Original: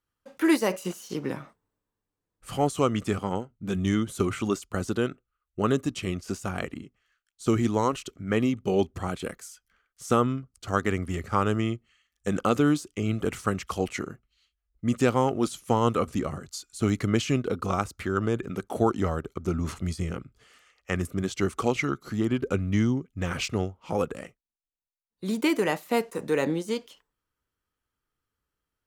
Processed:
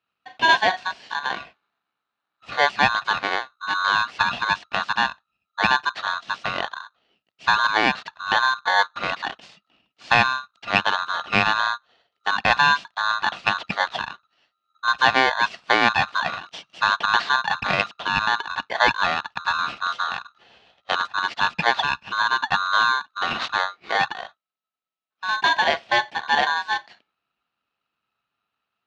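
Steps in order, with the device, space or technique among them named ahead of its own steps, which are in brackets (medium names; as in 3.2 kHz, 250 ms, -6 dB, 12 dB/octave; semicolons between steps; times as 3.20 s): ring modulator pedal into a guitar cabinet (polarity switched at an audio rate 1.3 kHz; cabinet simulation 76–4300 Hz, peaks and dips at 84 Hz -9 dB, 210 Hz +4 dB, 690 Hz +7 dB, 2.8 kHz +5 dB); trim +4 dB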